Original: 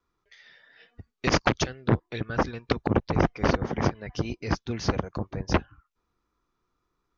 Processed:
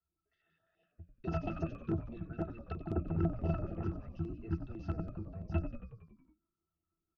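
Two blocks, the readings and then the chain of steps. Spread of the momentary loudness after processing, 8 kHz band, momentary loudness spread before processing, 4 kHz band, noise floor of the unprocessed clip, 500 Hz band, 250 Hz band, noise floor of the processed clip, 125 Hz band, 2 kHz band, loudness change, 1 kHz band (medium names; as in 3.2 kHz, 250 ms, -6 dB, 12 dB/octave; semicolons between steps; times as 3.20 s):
10 LU, no reading, 8 LU, under -25 dB, -79 dBFS, -14.0 dB, -10.0 dB, under -85 dBFS, -8.0 dB, -22.5 dB, -11.0 dB, -17.5 dB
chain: hum notches 60/120/180 Hz; pitch-class resonator E, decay 0.11 s; on a send: frequency-shifting echo 92 ms, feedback 63%, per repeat -49 Hz, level -10 dB; on the sum: step-sequenced notch 12 Hz 300–5000 Hz; trim -2 dB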